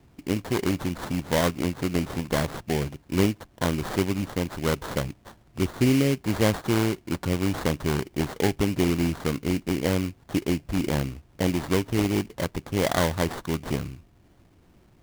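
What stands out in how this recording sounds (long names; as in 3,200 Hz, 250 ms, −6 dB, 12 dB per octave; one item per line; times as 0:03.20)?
aliases and images of a low sample rate 2,600 Hz, jitter 20%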